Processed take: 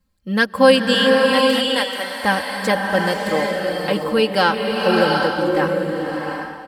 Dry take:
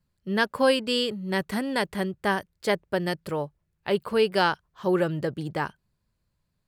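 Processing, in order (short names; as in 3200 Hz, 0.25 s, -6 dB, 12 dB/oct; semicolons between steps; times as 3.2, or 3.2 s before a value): 0.94–2.2 HPF 750 Hz 12 dB/oct; comb 3.8 ms, depth 75%; bloom reverb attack 0.75 s, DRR 0 dB; gain +4.5 dB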